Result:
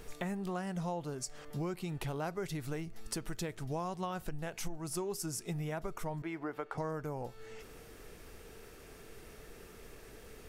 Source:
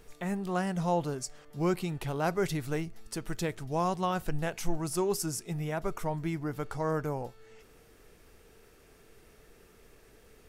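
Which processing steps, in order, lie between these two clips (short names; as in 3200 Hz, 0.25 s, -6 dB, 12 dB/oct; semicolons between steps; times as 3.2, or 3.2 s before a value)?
6.22–6.78 three-band isolator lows -20 dB, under 310 Hz, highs -15 dB, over 3100 Hz; compressor 6:1, threshold -41 dBFS, peak gain reduction 19 dB; gain +5.5 dB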